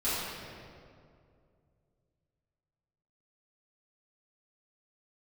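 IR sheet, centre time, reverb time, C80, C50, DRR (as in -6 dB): 0.148 s, 2.3 s, -1.0 dB, -3.5 dB, -14.0 dB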